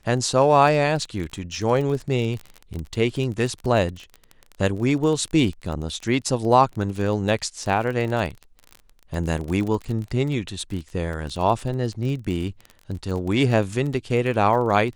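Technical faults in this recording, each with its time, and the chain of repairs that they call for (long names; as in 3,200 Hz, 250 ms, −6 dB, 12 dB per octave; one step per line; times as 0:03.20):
surface crackle 27 per second −28 dBFS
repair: click removal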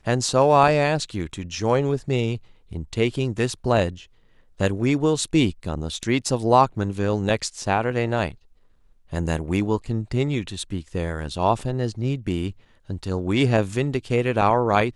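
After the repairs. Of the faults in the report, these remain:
none of them is left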